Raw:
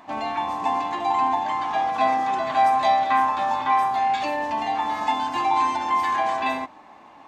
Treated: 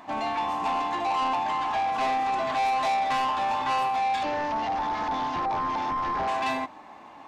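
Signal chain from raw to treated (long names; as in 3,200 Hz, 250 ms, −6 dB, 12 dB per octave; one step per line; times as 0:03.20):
0:04.23–0:06.28: linear delta modulator 32 kbit/s, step −39.5 dBFS
soft clipping −23.5 dBFS, distortion −9 dB
level +1 dB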